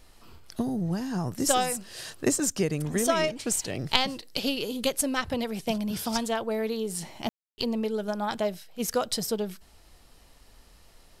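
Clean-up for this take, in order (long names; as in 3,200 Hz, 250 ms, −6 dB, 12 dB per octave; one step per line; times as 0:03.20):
clipped peaks rebuilt −5.5 dBFS
ambience match 0:07.29–0:07.58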